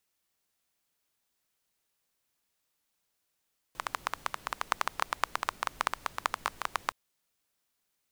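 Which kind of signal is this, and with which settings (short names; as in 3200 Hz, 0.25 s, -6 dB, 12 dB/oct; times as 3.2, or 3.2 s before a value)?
rain from filtered ticks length 3.17 s, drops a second 11, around 1100 Hz, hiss -18 dB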